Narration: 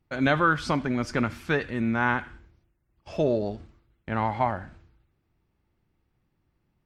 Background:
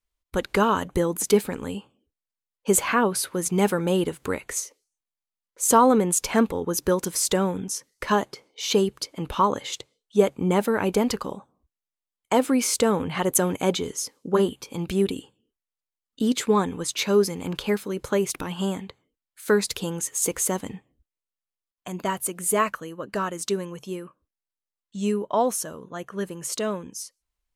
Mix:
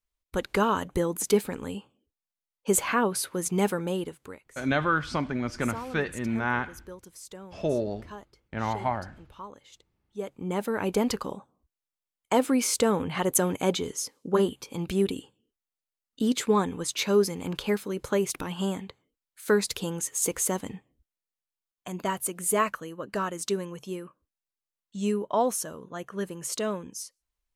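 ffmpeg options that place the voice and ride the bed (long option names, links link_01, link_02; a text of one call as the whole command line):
ffmpeg -i stem1.wav -i stem2.wav -filter_complex "[0:a]adelay=4450,volume=-3dB[link_01];[1:a]volume=15.5dB,afade=type=out:start_time=3.6:duration=0.83:silence=0.125893,afade=type=in:start_time=10.1:duration=0.98:silence=0.112202[link_02];[link_01][link_02]amix=inputs=2:normalize=0" out.wav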